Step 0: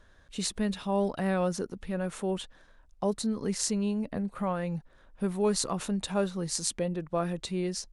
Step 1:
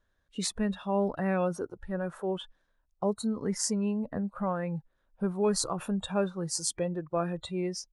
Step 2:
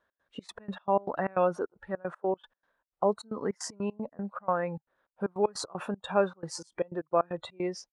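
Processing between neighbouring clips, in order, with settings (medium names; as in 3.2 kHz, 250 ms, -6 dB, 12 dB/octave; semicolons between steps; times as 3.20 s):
spectral noise reduction 16 dB
band-pass filter 950 Hz, Q 0.65; trance gate "x.xx.x.x.x.xx.xx" 154 bpm -24 dB; trim +6.5 dB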